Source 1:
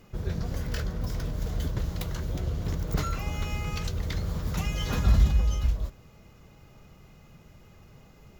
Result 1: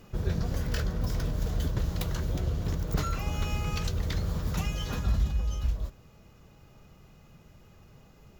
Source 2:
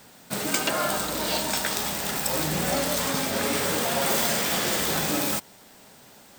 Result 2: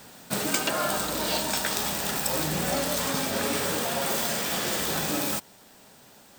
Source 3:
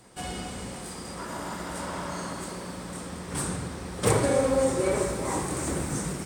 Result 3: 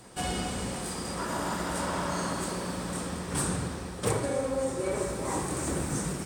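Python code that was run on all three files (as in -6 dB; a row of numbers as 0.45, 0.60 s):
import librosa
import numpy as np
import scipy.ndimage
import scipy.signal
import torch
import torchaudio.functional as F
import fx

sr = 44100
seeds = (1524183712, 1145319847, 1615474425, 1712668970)

y = fx.notch(x, sr, hz=2100.0, q=24.0)
y = fx.rider(y, sr, range_db=5, speed_s=0.5)
y = F.gain(torch.from_numpy(y), -1.5).numpy()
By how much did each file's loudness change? -1.5, -1.5, -2.0 LU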